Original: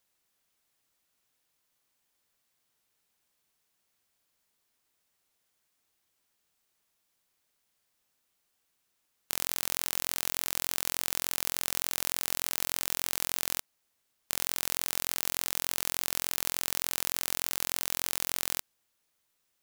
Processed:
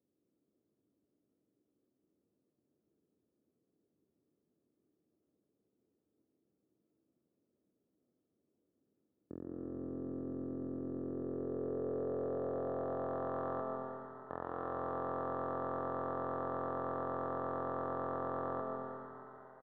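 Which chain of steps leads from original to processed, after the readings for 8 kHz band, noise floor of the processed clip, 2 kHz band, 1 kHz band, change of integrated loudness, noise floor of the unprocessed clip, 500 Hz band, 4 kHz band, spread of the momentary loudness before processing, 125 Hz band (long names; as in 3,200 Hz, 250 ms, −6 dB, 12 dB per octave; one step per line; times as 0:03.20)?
below −40 dB, −84 dBFS, −15.0 dB, +3.5 dB, −9.5 dB, −77 dBFS, +9.5 dB, below −35 dB, 1 LU, +3.5 dB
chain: high-pass filter 78 Hz 24 dB per octave
in parallel at −1 dB: downward compressor 10 to 1, threshold −44 dBFS, peak gain reduction 20 dB
on the sum: Chebyshev low-pass with heavy ripple 1,800 Hz, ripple 6 dB
wave folding −33 dBFS
low-pass filter sweep 300 Hz → 900 Hz, 0:10.74–0:13.35
on a send: echo with shifted repeats 451 ms, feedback 48%, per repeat +78 Hz, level −15.5 dB
on the sum: comb and all-pass reverb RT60 2.8 s, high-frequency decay 0.85×, pre-delay 90 ms, DRR 1 dB
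level +3.5 dB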